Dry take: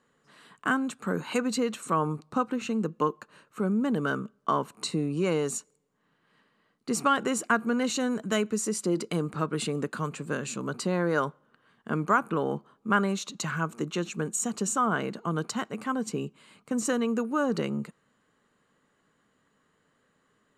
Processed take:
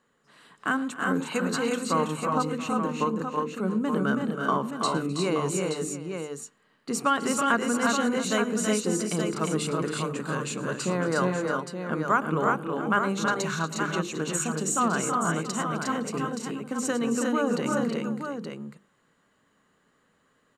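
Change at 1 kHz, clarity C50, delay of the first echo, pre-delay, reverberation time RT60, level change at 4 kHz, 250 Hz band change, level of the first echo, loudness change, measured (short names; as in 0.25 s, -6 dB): +3.0 dB, none, 0.112 s, none, none, +3.0 dB, +2.0 dB, -18.0 dB, +2.0 dB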